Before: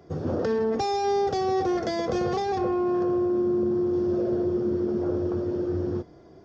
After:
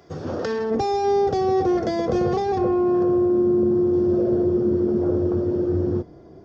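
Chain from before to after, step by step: tilt shelf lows -5 dB, about 850 Hz, from 0.7 s lows +4 dB; gain +2.5 dB

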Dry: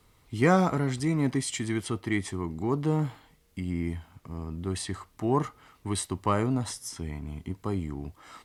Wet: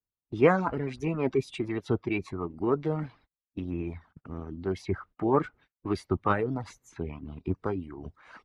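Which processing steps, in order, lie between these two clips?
reverb removal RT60 0.79 s; gate -53 dBFS, range -38 dB; harmonic-percussive split percussive +9 dB; formant shift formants +3 st; tape spacing loss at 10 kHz 31 dB; gain -2.5 dB

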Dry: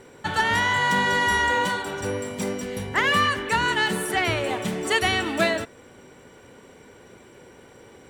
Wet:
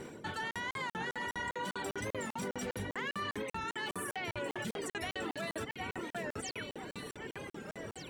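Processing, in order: reverse; compressor 10:1, threshold -30 dBFS, peak gain reduction 14 dB; reverse; painted sound fall, 6.42–6.63, 1300–9900 Hz -44 dBFS; on a send: echo with dull and thin repeats by turns 0.761 s, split 2400 Hz, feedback 63%, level -6 dB; on the sum: reverb removal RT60 0.78 s; limiter -31 dBFS, peak gain reduction 9.5 dB; band noise 120–470 Hz -52 dBFS; crackling interface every 0.20 s, samples 2048, zero, from 0.51; record warp 45 rpm, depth 160 cents; gain +1 dB

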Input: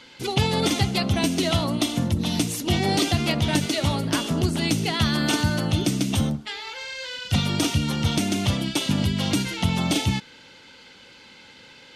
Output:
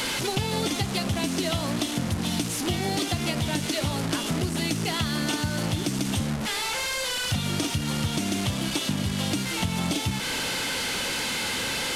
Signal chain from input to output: delta modulation 64 kbps, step -22.5 dBFS; compressor, threshold -23 dBFS, peak gain reduction 8 dB

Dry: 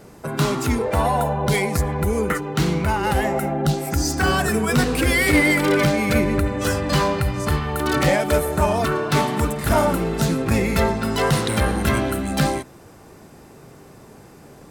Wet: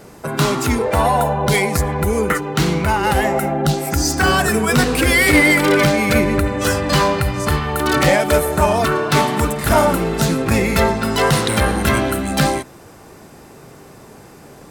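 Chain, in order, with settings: low shelf 410 Hz -3.5 dB; gain +5.5 dB

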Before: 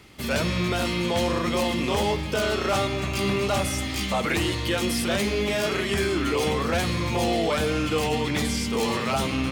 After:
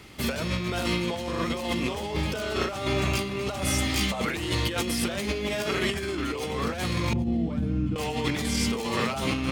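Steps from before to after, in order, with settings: 7.13–7.96 EQ curve 150 Hz 0 dB, 240 Hz +3 dB, 430 Hz -17 dB, 11000 Hz -30 dB; negative-ratio compressor -27 dBFS, ratio -0.5

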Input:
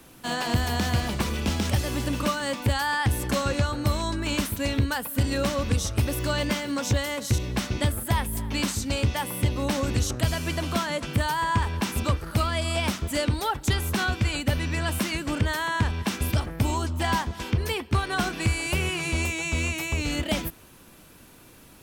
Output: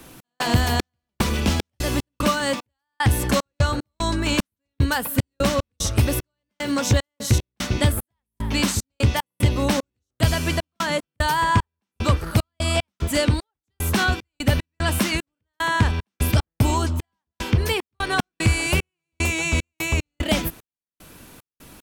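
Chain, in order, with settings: step gate "x.xx..xx." 75 bpm -60 dB; gain +5.5 dB

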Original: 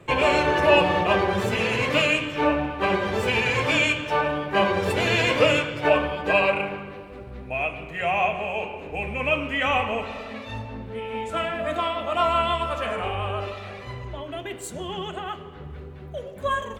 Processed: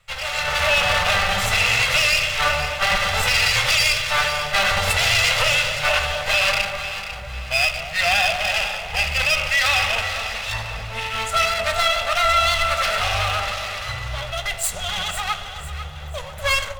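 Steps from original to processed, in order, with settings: minimum comb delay 1.5 ms; passive tone stack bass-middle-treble 10-0-10; AGC gain up to 16.5 dB; limiter -9 dBFS, peak gain reduction 7 dB; on a send: echo with dull and thin repeats by turns 0.249 s, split 830 Hz, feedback 61%, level -7 dB

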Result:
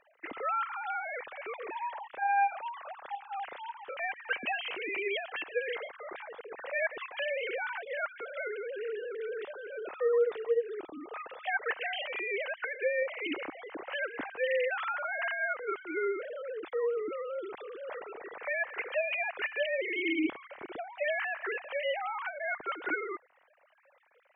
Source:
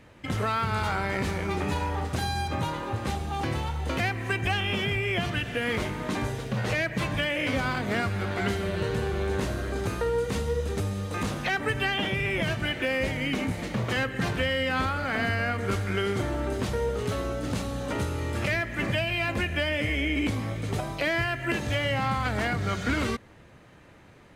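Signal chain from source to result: sine-wave speech; gain -6.5 dB

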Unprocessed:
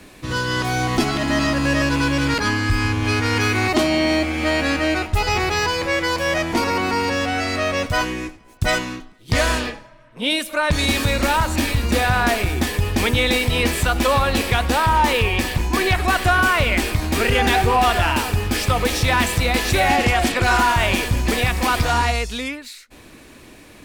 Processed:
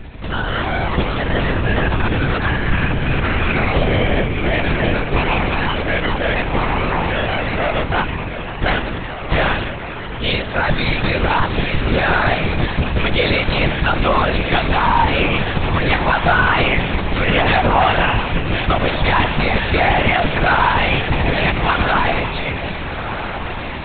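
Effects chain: diffused feedback echo 1.4 s, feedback 57%, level -9.5 dB; added noise brown -36 dBFS; LPC vocoder at 8 kHz whisper; gain +2 dB

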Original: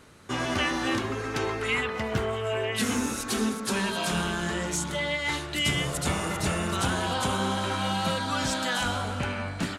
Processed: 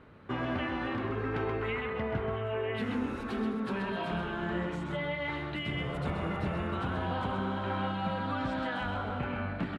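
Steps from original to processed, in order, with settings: compressor, threshold -28 dBFS, peak gain reduction 7 dB; air absorption 490 m; echo 0.13 s -7 dB

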